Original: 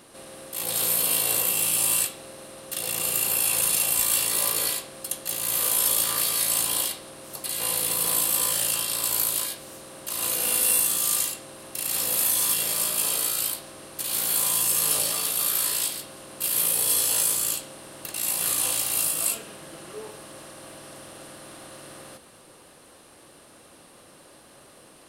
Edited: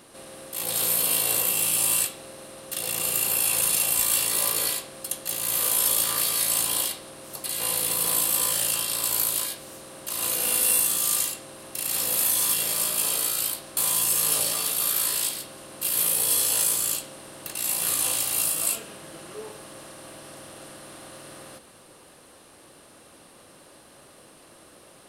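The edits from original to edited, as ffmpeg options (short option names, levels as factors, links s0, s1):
-filter_complex "[0:a]asplit=2[s0][s1];[s0]atrim=end=13.772[s2];[s1]atrim=start=14.358[s3];[s2][s3]acrossfade=d=0.004:c1=hsin:c2=hsin"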